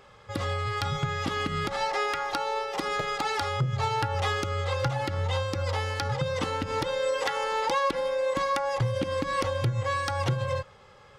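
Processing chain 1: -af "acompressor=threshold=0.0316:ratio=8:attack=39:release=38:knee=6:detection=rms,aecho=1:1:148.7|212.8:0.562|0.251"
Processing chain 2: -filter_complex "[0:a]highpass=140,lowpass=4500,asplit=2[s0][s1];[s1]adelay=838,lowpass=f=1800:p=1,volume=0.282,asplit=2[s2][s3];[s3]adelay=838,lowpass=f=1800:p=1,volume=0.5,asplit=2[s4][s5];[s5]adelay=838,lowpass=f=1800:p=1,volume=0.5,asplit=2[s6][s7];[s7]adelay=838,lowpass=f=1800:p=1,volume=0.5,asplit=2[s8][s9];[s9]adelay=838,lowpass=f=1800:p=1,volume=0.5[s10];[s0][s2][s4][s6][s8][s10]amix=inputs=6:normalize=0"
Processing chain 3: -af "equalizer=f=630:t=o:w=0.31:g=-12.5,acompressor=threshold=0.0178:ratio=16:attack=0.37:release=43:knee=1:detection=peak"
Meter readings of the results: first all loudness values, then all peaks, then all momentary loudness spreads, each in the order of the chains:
-30.0 LUFS, -29.0 LUFS, -40.0 LUFS; -15.0 dBFS, -15.5 dBFS, -27.0 dBFS; 3 LU, 4 LU, 1 LU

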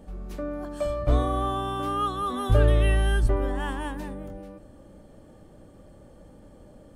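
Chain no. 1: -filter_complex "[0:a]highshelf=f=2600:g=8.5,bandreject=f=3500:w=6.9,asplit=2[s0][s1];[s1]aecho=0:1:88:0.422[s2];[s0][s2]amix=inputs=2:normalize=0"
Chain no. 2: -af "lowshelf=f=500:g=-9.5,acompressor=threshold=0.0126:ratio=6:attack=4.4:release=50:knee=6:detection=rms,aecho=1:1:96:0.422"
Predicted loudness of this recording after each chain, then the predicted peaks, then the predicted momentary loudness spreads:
-25.0 LUFS, -41.0 LUFS; -8.0 dBFS, -29.0 dBFS; 17 LU, 18 LU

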